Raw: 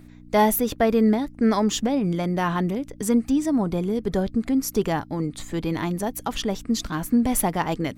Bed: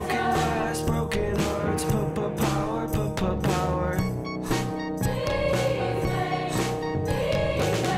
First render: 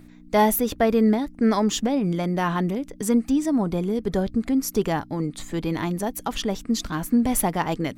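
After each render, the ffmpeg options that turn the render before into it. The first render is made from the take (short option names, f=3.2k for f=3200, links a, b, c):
-af "bandreject=f=60:t=h:w=4,bandreject=f=120:t=h:w=4"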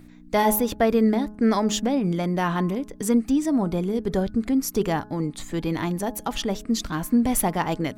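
-af "bandreject=f=211.4:t=h:w=4,bandreject=f=422.8:t=h:w=4,bandreject=f=634.2:t=h:w=4,bandreject=f=845.6:t=h:w=4,bandreject=f=1.057k:t=h:w=4,bandreject=f=1.2684k:t=h:w=4,bandreject=f=1.4798k:t=h:w=4,bandreject=f=1.6912k:t=h:w=4"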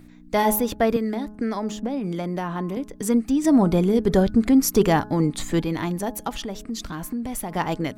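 -filter_complex "[0:a]asettb=1/sr,asplit=3[a][b][c];[a]atrim=end=0.964[d];[b]atrim=start=0.96:end=2.77,asetpts=PTS-STARTPTS,afade=t=in:d=0.004:c=qsin,afade=t=out:st=1.806:d=0.004:c=qsin,acrossover=split=210|1300[e][f][g];[e]acompressor=threshold=-34dB:ratio=4[h];[f]acompressor=threshold=-26dB:ratio=4[i];[g]acompressor=threshold=-41dB:ratio=4[j];[h][i][j]amix=inputs=3:normalize=0[k];[c]atrim=start=2.766[l];[d][k]acrossfade=d=0.004:c1=hsin:c2=qsin[m];[m][l]acrossfade=d=0.004:c1=qsin:c2=hsin,asettb=1/sr,asplit=3[n][o][p];[n]atrim=end=3.444[q];[o]atrim=start=3.44:end=5.63,asetpts=PTS-STARTPTS,afade=t=in:d=0.004:c=qsin,afade=t=out:st=2.186:d=0.004:c=qsin,acontrast=50[r];[p]atrim=start=5.626[s];[q][r]acrossfade=d=0.004:c1=hsin:c2=qsin[t];[t][s]acrossfade=d=0.004:c1=qsin:c2=hsin,asettb=1/sr,asplit=3[u][v][w];[u]atrim=end=6.294[x];[v]atrim=start=6.29:end=7.52,asetpts=PTS-STARTPTS,afade=t=in:d=0.004:c=qsin,afade=t=out:st=1.226:d=0.004:c=qsin,acompressor=threshold=-28dB:ratio=3:attack=3.2:release=140:knee=1:detection=peak[y];[w]atrim=start=7.516[z];[x][y]acrossfade=d=0.004:c1=hsin:c2=qsin[aa];[aa][z]acrossfade=d=0.004:c1=qsin:c2=hsin"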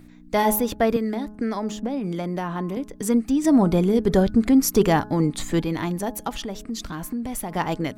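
-af anull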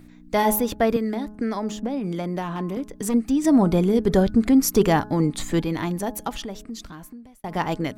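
-filter_complex "[0:a]asettb=1/sr,asplit=3[a][b][c];[a]atrim=end=2.424[d];[b]atrim=start=2.42:end=3.14,asetpts=PTS-STARTPTS,afade=t=in:d=0.004:c=qsin,afade=t=out:st=0.716:d=0.004:c=qsin,asoftclip=type=hard:threshold=-20.5dB[e];[c]atrim=start=3.136[f];[d][e]acrossfade=d=0.004:c1=hsin:c2=qsin[g];[g][f]acrossfade=d=0.004:c1=qsin:c2=hsin,asplit=2[h][i];[h]atrim=end=7.44,asetpts=PTS-STARTPTS,afade=t=out:st=6.26:d=1.18[j];[i]atrim=start=7.44,asetpts=PTS-STARTPTS,afade=t=in:d=0.004:c=hsin[k];[j][k]concat=n=2:v=0:a=1"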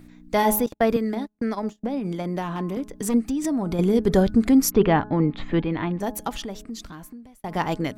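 -filter_complex "[0:a]asettb=1/sr,asplit=3[a][b][c];[a]atrim=end=0.664[d];[b]atrim=start=0.66:end=2.25,asetpts=PTS-STARTPTS,afade=t=in:d=0.004:c=qsin,afade=t=out:st=1.586:d=0.004:c=qsin,agate=range=-36dB:threshold=-29dB:ratio=16:release=100:detection=peak[e];[c]atrim=start=2.246[f];[d][e]acrossfade=d=0.004:c1=hsin:c2=qsin[g];[g][f]acrossfade=d=0.004:c1=qsin:c2=hsin,asettb=1/sr,asplit=3[h][i][j];[h]atrim=end=3.224[k];[i]atrim=start=3.22:end=3.79,asetpts=PTS-STARTPTS,afade=t=in:d=0.004:c=qsin,afade=t=out:st=0.566:d=0.004:c=qsin,acompressor=threshold=-22dB:ratio=5:attack=3.2:release=140:knee=1:detection=peak[l];[j]atrim=start=3.786[m];[k][l]acrossfade=d=0.004:c1=hsin:c2=qsin[n];[n][m]acrossfade=d=0.004:c1=qsin:c2=hsin,asplit=3[o][p][q];[o]afade=t=out:st=4.7:d=0.02[r];[p]lowpass=f=3.2k:w=0.5412,lowpass=f=3.2k:w=1.3066,afade=t=in:st=4.7:d=0.02,afade=t=out:st=6:d=0.02[s];[q]afade=t=in:st=6:d=0.02[t];[r][s][t]amix=inputs=3:normalize=0"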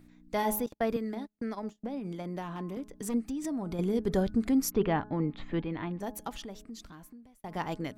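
-af "volume=-9.5dB"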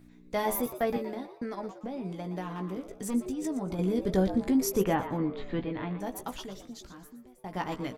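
-filter_complex "[0:a]asplit=2[a][b];[b]adelay=16,volume=-7dB[c];[a][c]amix=inputs=2:normalize=0,asplit=2[d][e];[e]asplit=4[f][g][h][i];[f]adelay=118,afreqshift=130,volume=-12dB[j];[g]adelay=236,afreqshift=260,volume=-21.1dB[k];[h]adelay=354,afreqshift=390,volume=-30.2dB[l];[i]adelay=472,afreqshift=520,volume=-39.4dB[m];[j][k][l][m]amix=inputs=4:normalize=0[n];[d][n]amix=inputs=2:normalize=0"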